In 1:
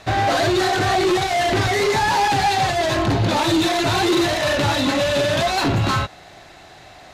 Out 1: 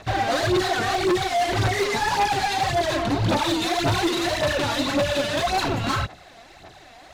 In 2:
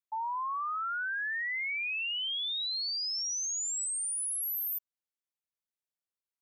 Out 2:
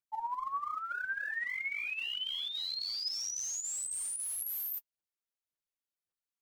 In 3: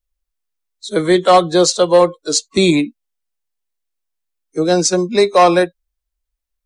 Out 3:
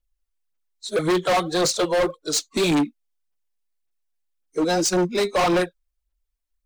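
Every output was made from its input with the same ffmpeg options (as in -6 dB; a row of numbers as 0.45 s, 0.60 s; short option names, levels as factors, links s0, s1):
-af "aphaser=in_gain=1:out_gain=1:delay=4.4:decay=0.61:speed=1.8:type=sinusoidal,volume=3.76,asoftclip=hard,volume=0.266,volume=0.531"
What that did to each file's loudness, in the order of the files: -4.0 LU, -3.5 LU, -8.0 LU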